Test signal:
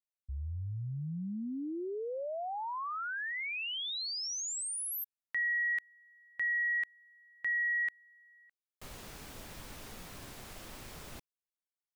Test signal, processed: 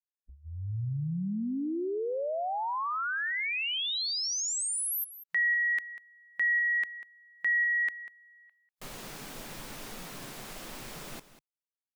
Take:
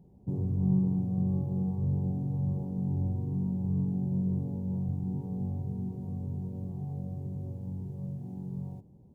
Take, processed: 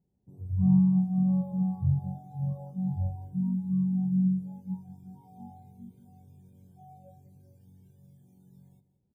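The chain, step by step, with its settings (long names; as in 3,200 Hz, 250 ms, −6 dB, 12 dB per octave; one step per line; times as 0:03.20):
noise reduction from a noise print of the clip's start 25 dB
on a send: single-tap delay 194 ms −15 dB
on the sum: level +5.5 dB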